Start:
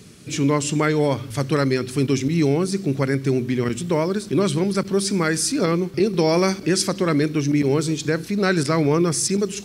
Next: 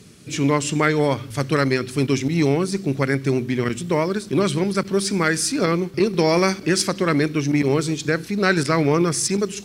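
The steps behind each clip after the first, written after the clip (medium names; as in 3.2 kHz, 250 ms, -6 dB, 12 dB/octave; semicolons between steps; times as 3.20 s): Chebyshev shaper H 3 -24 dB, 7 -41 dB, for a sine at -7.5 dBFS; dynamic bell 1.9 kHz, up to +4 dB, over -35 dBFS, Q 0.73; trim +1 dB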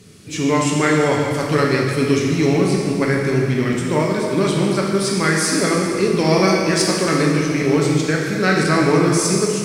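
plate-style reverb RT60 2.3 s, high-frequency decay 0.95×, DRR -2.5 dB; trim -1 dB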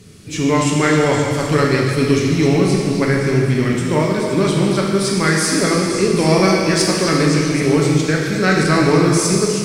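bass shelf 69 Hz +11 dB; repeats whose band climbs or falls 260 ms, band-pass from 3.8 kHz, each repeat 0.7 oct, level -5 dB; trim +1 dB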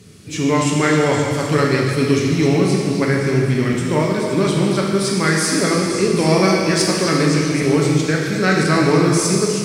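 high-pass 59 Hz; trim -1 dB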